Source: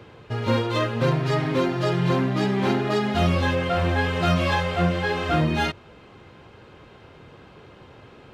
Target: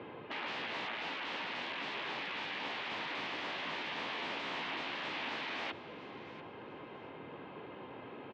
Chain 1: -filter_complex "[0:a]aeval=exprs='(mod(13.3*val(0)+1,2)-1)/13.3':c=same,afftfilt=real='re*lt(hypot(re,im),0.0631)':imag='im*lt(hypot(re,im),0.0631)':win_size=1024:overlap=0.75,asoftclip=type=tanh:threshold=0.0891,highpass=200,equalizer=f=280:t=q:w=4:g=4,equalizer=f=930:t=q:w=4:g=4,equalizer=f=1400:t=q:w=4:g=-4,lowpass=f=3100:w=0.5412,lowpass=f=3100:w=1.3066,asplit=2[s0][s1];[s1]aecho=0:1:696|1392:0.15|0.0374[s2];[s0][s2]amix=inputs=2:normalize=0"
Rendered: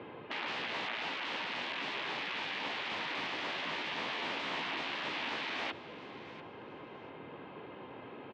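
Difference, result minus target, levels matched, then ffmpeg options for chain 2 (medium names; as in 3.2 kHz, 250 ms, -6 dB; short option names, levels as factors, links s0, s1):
saturation: distortion -12 dB
-filter_complex "[0:a]aeval=exprs='(mod(13.3*val(0)+1,2)-1)/13.3':c=same,afftfilt=real='re*lt(hypot(re,im),0.0631)':imag='im*lt(hypot(re,im),0.0631)':win_size=1024:overlap=0.75,asoftclip=type=tanh:threshold=0.0299,highpass=200,equalizer=f=280:t=q:w=4:g=4,equalizer=f=930:t=q:w=4:g=4,equalizer=f=1400:t=q:w=4:g=-4,lowpass=f=3100:w=0.5412,lowpass=f=3100:w=1.3066,asplit=2[s0][s1];[s1]aecho=0:1:696|1392:0.15|0.0374[s2];[s0][s2]amix=inputs=2:normalize=0"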